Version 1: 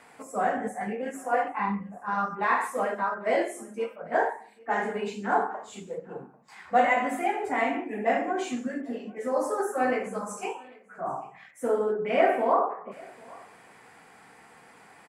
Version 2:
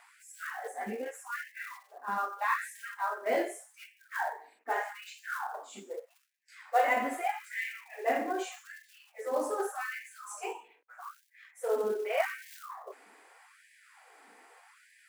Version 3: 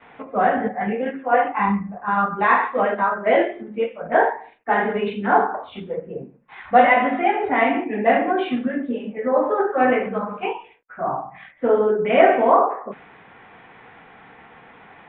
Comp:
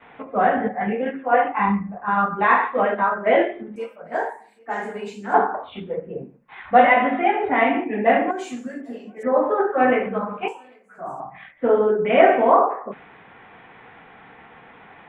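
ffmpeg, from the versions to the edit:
-filter_complex "[0:a]asplit=3[a][b][c];[2:a]asplit=4[d][e][f][g];[d]atrim=end=3.762[h];[a]atrim=start=3.758:end=5.342[i];[e]atrim=start=5.338:end=8.312[j];[b]atrim=start=8.308:end=9.232[k];[f]atrim=start=9.228:end=10.482[l];[c]atrim=start=10.478:end=11.202[m];[g]atrim=start=11.198[n];[h][i]acrossfade=d=0.004:c1=hsin:c2=hsin[o];[o][j]acrossfade=d=0.004:c1=hsin:c2=hsin[p];[p][k]acrossfade=d=0.004:c1=hsin:c2=hsin[q];[q][l]acrossfade=d=0.004:c1=hsin:c2=hsin[r];[r][m]acrossfade=d=0.004:c1=hsin:c2=hsin[s];[s][n]acrossfade=d=0.004:c1=hsin:c2=hsin"

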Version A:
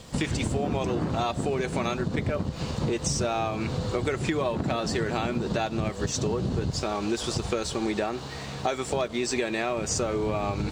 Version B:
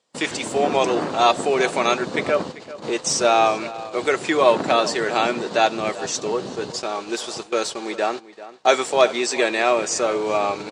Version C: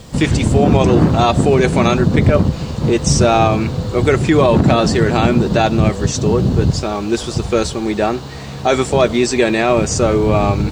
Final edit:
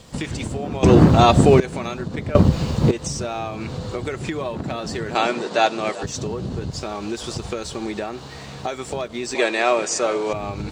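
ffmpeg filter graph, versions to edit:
-filter_complex "[2:a]asplit=2[a][b];[1:a]asplit=2[c][d];[0:a]asplit=5[e][f][g][h][i];[e]atrim=end=0.832[j];[a]atrim=start=0.828:end=1.602[k];[f]atrim=start=1.598:end=2.352[l];[b]atrim=start=2.348:end=2.912[m];[g]atrim=start=2.908:end=5.152[n];[c]atrim=start=5.148:end=6.032[o];[h]atrim=start=6.028:end=9.352[p];[d]atrim=start=9.348:end=10.332[q];[i]atrim=start=10.328[r];[j][k]acrossfade=d=0.004:c1=hsin:c2=hsin[s];[s][l]acrossfade=d=0.004:c1=hsin:c2=hsin[t];[t][m]acrossfade=d=0.004:c1=hsin:c2=hsin[u];[u][n]acrossfade=d=0.004:c1=hsin:c2=hsin[v];[v][o]acrossfade=d=0.004:c1=hsin:c2=hsin[w];[w][p]acrossfade=d=0.004:c1=hsin:c2=hsin[x];[x][q]acrossfade=d=0.004:c1=hsin:c2=hsin[y];[y][r]acrossfade=d=0.004:c1=hsin:c2=hsin"

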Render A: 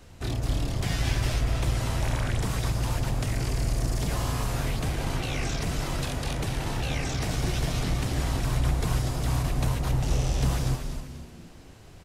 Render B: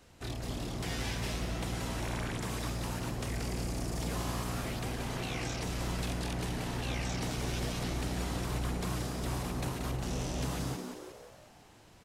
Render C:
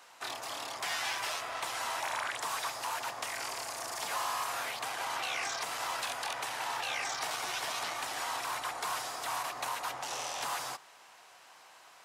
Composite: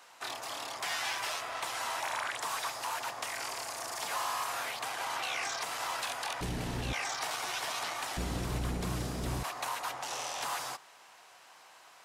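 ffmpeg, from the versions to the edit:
-filter_complex "[1:a]asplit=2[a][b];[2:a]asplit=3[c][d][e];[c]atrim=end=6.412[f];[a]atrim=start=6.408:end=6.932[g];[d]atrim=start=6.928:end=8.172[h];[b]atrim=start=8.168:end=9.432[i];[e]atrim=start=9.428[j];[f][g]acrossfade=d=0.004:c1=hsin:c2=hsin[k];[k][h]acrossfade=d=0.004:c1=hsin:c2=hsin[l];[l][i]acrossfade=d=0.004:c1=hsin:c2=hsin[m];[m][j]acrossfade=d=0.004:c1=hsin:c2=hsin"

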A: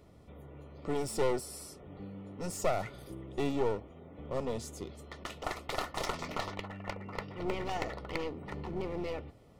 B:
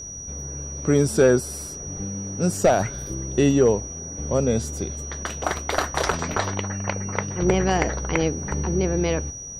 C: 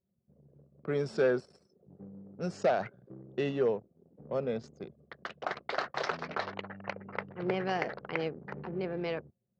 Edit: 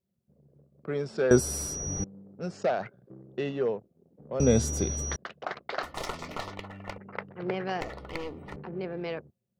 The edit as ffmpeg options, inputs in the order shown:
-filter_complex "[1:a]asplit=2[a][b];[0:a]asplit=2[c][d];[2:a]asplit=5[e][f][g][h][i];[e]atrim=end=1.312[j];[a]atrim=start=1.308:end=2.042[k];[f]atrim=start=2.038:end=4.402[l];[b]atrim=start=4.398:end=5.162[m];[g]atrim=start=5.158:end=5.832[n];[c]atrim=start=5.828:end=6.982[o];[h]atrim=start=6.978:end=7.812[p];[d]atrim=start=7.808:end=8.562[q];[i]atrim=start=8.558[r];[j][k]acrossfade=d=0.004:c1=hsin:c2=hsin[s];[s][l]acrossfade=d=0.004:c1=hsin:c2=hsin[t];[t][m]acrossfade=d=0.004:c1=hsin:c2=hsin[u];[u][n]acrossfade=d=0.004:c1=hsin:c2=hsin[v];[v][o]acrossfade=d=0.004:c1=hsin:c2=hsin[w];[w][p]acrossfade=d=0.004:c1=hsin:c2=hsin[x];[x][q]acrossfade=d=0.004:c1=hsin:c2=hsin[y];[y][r]acrossfade=d=0.004:c1=hsin:c2=hsin"

